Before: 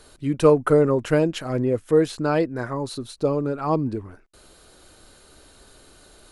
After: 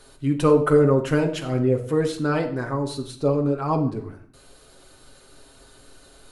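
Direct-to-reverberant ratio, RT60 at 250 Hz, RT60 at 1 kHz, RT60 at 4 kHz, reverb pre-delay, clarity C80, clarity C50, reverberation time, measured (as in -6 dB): 2.0 dB, 0.75 s, 0.60 s, 0.50 s, 7 ms, 13.5 dB, 11.0 dB, 0.55 s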